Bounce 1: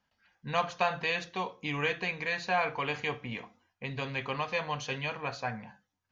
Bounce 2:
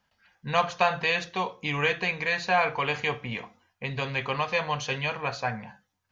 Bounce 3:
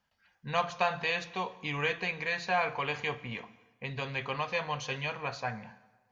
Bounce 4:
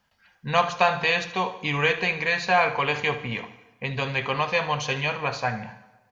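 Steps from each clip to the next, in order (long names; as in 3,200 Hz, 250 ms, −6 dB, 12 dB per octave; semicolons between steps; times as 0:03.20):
parametric band 280 Hz −4.5 dB 0.58 octaves; level +5.5 dB
dense smooth reverb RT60 1.3 s, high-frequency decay 0.75×, pre-delay 100 ms, DRR 19.5 dB; level −5.5 dB
repeating echo 75 ms, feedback 43%, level −14.5 dB; level +8.5 dB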